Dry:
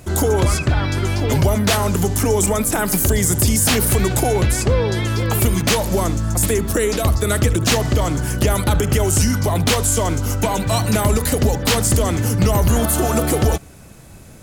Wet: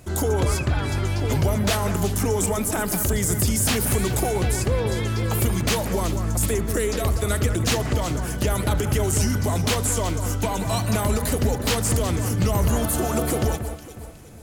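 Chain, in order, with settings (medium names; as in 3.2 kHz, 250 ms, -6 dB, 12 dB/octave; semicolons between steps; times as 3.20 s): echo whose repeats swap between lows and highs 183 ms, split 2.2 kHz, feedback 61%, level -8.5 dB; trim -6 dB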